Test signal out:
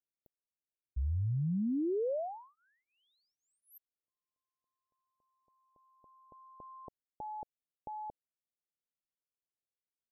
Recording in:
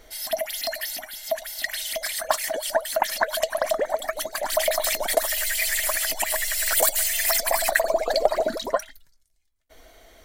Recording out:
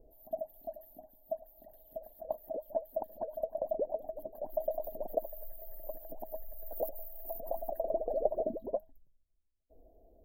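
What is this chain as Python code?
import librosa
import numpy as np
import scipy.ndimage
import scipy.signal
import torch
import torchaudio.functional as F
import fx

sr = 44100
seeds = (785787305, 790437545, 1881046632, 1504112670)

y = scipy.signal.sosfilt(scipy.signal.cheby2(4, 40, [1200.0, 9900.0], 'bandstop', fs=sr, output='sos'), x)
y = fx.high_shelf(y, sr, hz=3500.0, db=-11.0)
y = y * 10.0 ** (-7.0 / 20.0)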